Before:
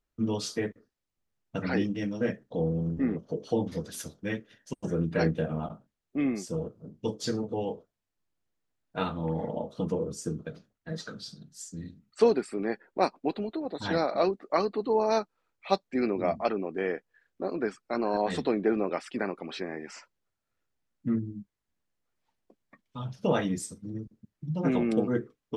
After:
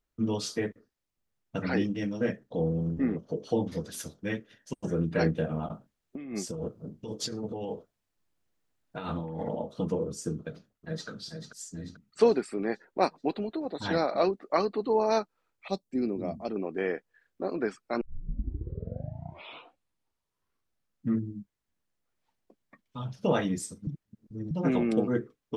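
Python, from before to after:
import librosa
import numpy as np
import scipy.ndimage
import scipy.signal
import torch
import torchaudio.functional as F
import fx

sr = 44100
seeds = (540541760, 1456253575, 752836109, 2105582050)

y = fx.over_compress(x, sr, threshold_db=-35.0, ratio=-1.0, at=(5.7, 9.58))
y = fx.echo_throw(y, sr, start_s=10.39, length_s=0.69, ms=440, feedback_pct=50, wet_db=-7.5)
y = fx.curve_eq(y, sr, hz=(250.0, 1700.0, 8800.0), db=(0, -17, 2), at=(15.68, 16.56))
y = fx.edit(y, sr, fx.tape_start(start_s=18.01, length_s=3.18),
    fx.reverse_span(start_s=23.87, length_s=0.64), tone=tone)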